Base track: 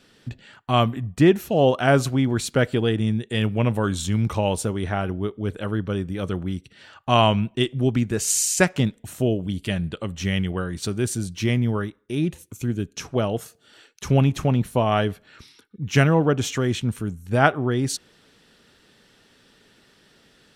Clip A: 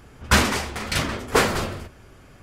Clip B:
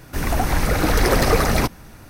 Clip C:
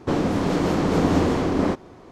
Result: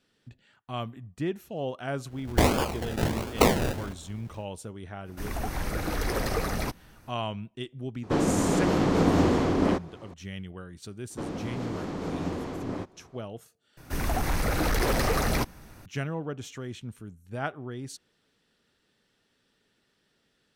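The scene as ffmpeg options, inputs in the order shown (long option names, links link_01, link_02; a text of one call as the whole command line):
ffmpeg -i bed.wav -i cue0.wav -i cue1.wav -i cue2.wav -filter_complex "[2:a]asplit=2[link_01][link_02];[3:a]asplit=2[link_03][link_04];[0:a]volume=-15dB[link_05];[1:a]acrusher=samples=32:mix=1:aa=0.000001:lfo=1:lforange=19.2:lforate=1.4[link_06];[link_02]volume=14dB,asoftclip=hard,volume=-14dB[link_07];[link_05]asplit=2[link_08][link_09];[link_08]atrim=end=13.774[link_10];[link_07]atrim=end=2.09,asetpts=PTS-STARTPTS,volume=-6.5dB[link_11];[link_09]atrim=start=15.856[link_12];[link_06]atrim=end=2.42,asetpts=PTS-STARTPTS,volume=-2.5dB,afade=type=in:duration=0.1,afade=type=out:start_time=2.32:duration=0.1,adelay=2060[link_13];[link_01]atrim=end=2.09,asetpts=PTS-STARTPTS,volume=-12dB,afade=type=in:duration=0.05,afade=type=out:start_time=2.04:duration=0.05,adelay=5040[link_14];[link_03]atrim=end=2.11,asetpts=PTS-STARTPTS,volume=-2.5dB,afade=type=in:duration=0.004:curve=hsin,afade=type=out:start_time=2.106:duration=0.004:curve=hsin,adelay=8030[link_15];[link_04]atrim=end=2.11,asetpts=PTS-STARTPTS,volume=-13dB,afade=type=in:duration=0.004:curve=hsin,afade=type=out:start_time=2.106:duration=0.004:curve=hsin,adelay=11100[link_16];[link_10][link_11]acrossfade=duration=0.004:curve1=hsin:curve2=hsin[link_17];[link_17][link_12]acrossfade=duration=0.004:curve1=hsin:curve2=hsin[link_18];[link_18][link_13][link_14][link_15][link_16]amix=inputs=5:normalize=0" out.wav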